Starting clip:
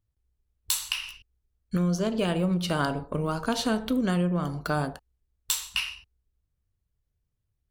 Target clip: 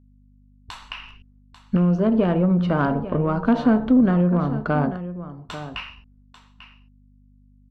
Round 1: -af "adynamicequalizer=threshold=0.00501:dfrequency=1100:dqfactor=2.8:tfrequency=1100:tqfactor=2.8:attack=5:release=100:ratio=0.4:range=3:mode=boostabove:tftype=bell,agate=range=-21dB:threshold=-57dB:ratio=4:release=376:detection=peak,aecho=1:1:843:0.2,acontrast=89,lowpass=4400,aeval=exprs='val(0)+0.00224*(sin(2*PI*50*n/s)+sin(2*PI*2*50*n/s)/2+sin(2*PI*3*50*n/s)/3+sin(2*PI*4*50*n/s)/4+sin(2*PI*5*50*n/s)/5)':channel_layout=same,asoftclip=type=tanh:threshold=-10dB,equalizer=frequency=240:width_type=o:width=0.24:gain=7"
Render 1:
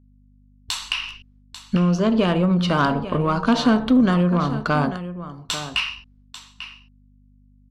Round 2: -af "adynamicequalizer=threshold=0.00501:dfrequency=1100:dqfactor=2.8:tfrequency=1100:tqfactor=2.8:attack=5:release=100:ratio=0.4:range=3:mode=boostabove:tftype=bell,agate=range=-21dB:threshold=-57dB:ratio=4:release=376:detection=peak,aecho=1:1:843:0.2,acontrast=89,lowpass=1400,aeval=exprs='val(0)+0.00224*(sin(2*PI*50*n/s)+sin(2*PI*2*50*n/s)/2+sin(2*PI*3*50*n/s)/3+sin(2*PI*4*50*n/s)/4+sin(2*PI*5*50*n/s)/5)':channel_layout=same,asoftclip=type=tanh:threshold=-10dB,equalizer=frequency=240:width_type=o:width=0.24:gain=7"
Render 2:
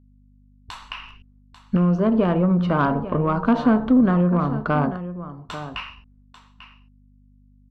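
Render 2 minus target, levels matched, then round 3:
1,000 Hz band +2.5 dB
-af "agate=range=-21dB:threshold=-57dB:ratio=4:release=376:detection=peak,aecho=1:1:843:0.2,acontrast=89,lowpass=1400,aeval=exprs='val(0)+0.00224*(sin(2*PI*50*n/s)+sin(2*PI*2*50*n/s)/2+sin(2*PI*3*50*n/s)/3+sin(2*PI*4*50*n/s)/4+sin(2*PI*5*50*n/s)/5)':channel_layout=same,asoftclip=type=tanh:threshold=-10dB,equalizer=frequency=240:width_type=o:width=0.24:gain=7"

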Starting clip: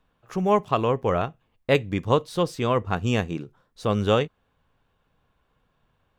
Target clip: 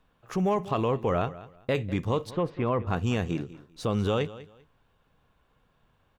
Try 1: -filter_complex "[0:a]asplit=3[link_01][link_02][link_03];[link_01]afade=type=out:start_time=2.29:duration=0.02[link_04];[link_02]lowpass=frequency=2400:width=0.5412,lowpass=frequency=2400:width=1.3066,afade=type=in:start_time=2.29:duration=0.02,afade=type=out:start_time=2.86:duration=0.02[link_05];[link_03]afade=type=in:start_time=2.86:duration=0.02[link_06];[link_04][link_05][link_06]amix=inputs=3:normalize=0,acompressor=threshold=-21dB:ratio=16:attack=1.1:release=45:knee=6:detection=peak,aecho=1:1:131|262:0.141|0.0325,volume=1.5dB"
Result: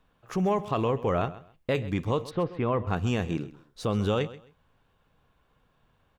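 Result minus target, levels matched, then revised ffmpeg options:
echo 65 ms early
-filter_complex "[0:a]asplit=3[link_01][link_02][link_03];[link_01]afade=type=out:start_time=2.29:duration=0.02[link_04];[link_02]lowpass=frequency=2400:width=0.5412,lowpass=frequency=2400:width=1.3066,afade=type=in:start_time=2.29:duration=0.02,afade=type=out:start_time=2.86:duration=0.02[link_05];[link_03]afade=type=in:start_time=2.86:duration=0.02[link_06];[link_04][link_05][link_06]amix=inputs=3:normalize=0,acompressor=threshold=-21dB:ratio=16:attack=1.1:release=45:knee=6:detection=peak,aecho=1:1:196|392:0.141|0.0325,volume=1.5dB"

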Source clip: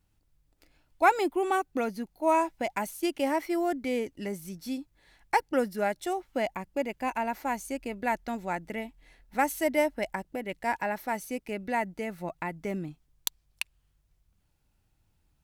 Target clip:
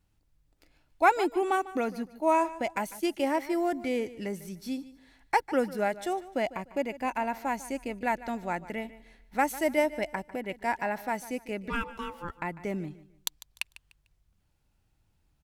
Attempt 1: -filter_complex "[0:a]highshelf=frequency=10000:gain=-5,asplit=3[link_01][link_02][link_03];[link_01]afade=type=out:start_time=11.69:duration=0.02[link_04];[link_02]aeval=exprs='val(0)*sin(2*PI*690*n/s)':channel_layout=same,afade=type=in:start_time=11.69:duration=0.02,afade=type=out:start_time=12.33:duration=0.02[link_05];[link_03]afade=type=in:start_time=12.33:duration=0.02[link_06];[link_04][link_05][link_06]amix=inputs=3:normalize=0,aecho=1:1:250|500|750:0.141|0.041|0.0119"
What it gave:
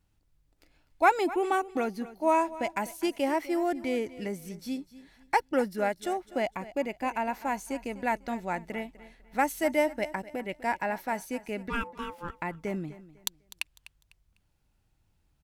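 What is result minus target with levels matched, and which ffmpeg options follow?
echo 101 ms late
-filter_complex "[0:a]highshelf=frequency=10000:gain=-5,asplit=3[link_01][link_02][link_03];[link_01]afade=type=out:start_time=11.69:duration=0.02[link_04];[link_02]aeval=exprs='val(0)*sin(2*PI*690*n/s)':channel_layout=same,afade=type=in:start_time=11.69:duration=0.02,afade=type=out:start_time=12.33:duration=0.02[link_05];[link_03]afade=type=in:start_time=12.33:duration=0.02[link_06];[link_04][link_05][link_06]amix=inputs=3:normalize=0,aecho=1:1:149|298|447:0.141|0.041|0.0119"

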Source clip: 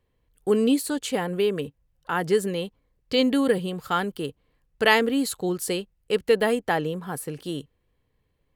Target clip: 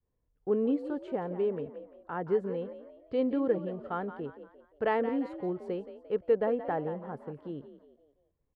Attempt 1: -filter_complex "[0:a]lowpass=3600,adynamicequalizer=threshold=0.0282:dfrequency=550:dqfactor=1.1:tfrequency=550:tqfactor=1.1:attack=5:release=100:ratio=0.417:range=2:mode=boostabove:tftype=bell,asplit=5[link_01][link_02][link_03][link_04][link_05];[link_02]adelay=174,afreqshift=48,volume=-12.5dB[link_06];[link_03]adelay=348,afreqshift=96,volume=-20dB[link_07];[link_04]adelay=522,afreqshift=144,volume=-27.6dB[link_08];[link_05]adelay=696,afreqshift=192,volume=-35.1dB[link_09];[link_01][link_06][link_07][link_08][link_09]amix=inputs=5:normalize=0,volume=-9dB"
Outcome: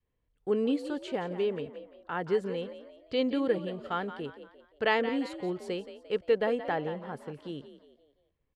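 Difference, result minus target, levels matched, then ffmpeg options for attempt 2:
4,000 Hz band +14.5 dB
-filter_complex "[0:a]lowpass=1200,adynamicequalizer=threshold=0.0282:dfrequency=550:dqfactor=1.1:tfrequency=550:tqfactor=1.1:attack=5:release=100:ratio=0.417:range=2:mode=boostabove:tftype=bell,asplit=5[link_01][link_02][link_03][link_04][link_05];[link_02]adelay=174,afreqshift=48,volume=-12.5dB[link_06];[link_03]adelay=348,afreqshift=96,volume=-20dB[link_07];[link_04]adelay=522,afreqshift=144,volume=-27.6dB[link_08];[link_05]adelay=696,afreqshift=192,volume=-35.1dB[link_09];[link_01][link_06][link_07][link_08][link_09]amix=inputs=5:normalize=0,volume=-9dB"

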